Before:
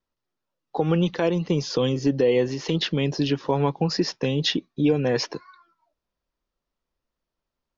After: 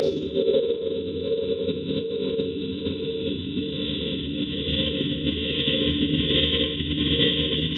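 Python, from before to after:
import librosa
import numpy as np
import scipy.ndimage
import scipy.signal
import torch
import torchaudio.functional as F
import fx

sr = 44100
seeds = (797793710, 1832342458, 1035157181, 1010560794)

p1 = fx.echo_multitap(x, sr, ms=(96, 109, 195, 766, 799, 863), db=(-16.5, -15.0, -17.0, -19.5, -17.0, -17.0))
p2 = fx.dynamic_eq(p1, sr, hz=830.0, q=1.5, threshold_db=-36.0, ratio=4.0, max_db=4)
p3 = fx.double_bandpass(p2, sr, hz=1300.0, octaves=3.0)
p4 = fx.paulstretch(p3, sr, seeds[0], factor=10.0, window_s=1.0, from_s=3.78)
p5 = fx.level_steps(p4, sr, step_db=16)
p6 = p4 + F.gain(torch.from_numpy(p5), -0.5).numpy()
p7 = fx.rev_schroeder(p6, sr, rt60_s=0.56, comb_ms=28, drr_db=6.0)
p8 = fx.rotary(p7, sr, hz=1.2)
p9 = fx.pitch_keep_formants(p8, sr, semitones=-10.5)
y = F.gain(torch.from_numpy(p9), 8.0).numpy()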